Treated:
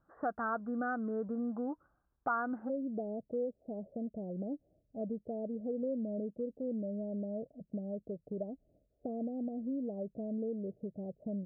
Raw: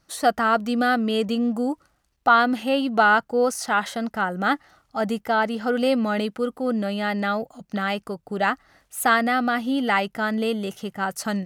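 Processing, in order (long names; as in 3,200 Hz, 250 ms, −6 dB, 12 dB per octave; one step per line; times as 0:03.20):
Chebyshev low-pass filter 1,600 Hz, order 6, from 0:02.68 630 Hz
downward compressor 2 to 1, threshold −31 dBFS, peak gain reduction 10.5 dB
level −7 dB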